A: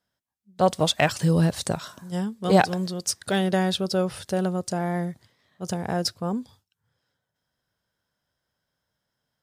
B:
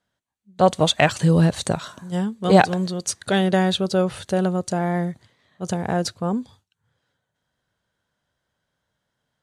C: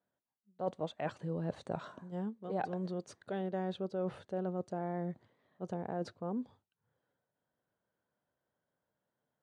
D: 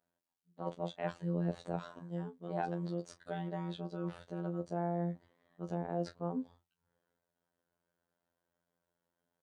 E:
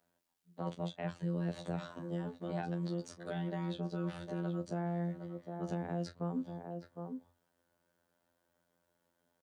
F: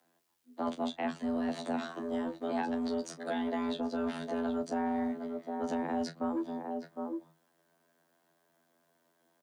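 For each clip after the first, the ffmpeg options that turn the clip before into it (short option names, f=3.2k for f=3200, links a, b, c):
-af "lowpass=8.7k,bandreject=f=5.2k:w=5.1,volume=4dB"
-af "areverse,acompressor=threshold=-27dB:ratio=6,areverse,bandpass=f=440:t=q:w=0.65:csg=0,volume=-5dB"
-filter_complex "[0:a]asplit=2[a][b];[b]adelay=30,volume=-12.5dB[c];[a][c]amix=inputs=2:normalize=0,afftfilt=real='hypot(re,im)*cos(PI*b)':imag='0':win_size=2048:overlap=0.75,volume=3dB"
-filter_complex "[0:a]asplit=2[a][b];[b]adelay=758,volume=-12dB,highshelf=f=4k:g=-17.1[c];[a][c]amix=inputs=2:normalize=0,acrossover=split=240|1600[d][e][f];[d]acompressor=threshold=-44dB:ratio=4[g];[e]acompressor=threshold=-49dB:ratio=4[h];[f]acompressor=threshold=-56dB:ratio=4[i];[g][h][i]amix=inputs=3:normalize=0,volume=7dB"
-filter_complex "[0:a]afreqshift=73,acrossover=split=550|890[a][b][c];[a]asoftclip=type=tanh:threshold=-37dB[d];[d][b][c]amix=inputs=3:normalize=0,volume=6.5dB"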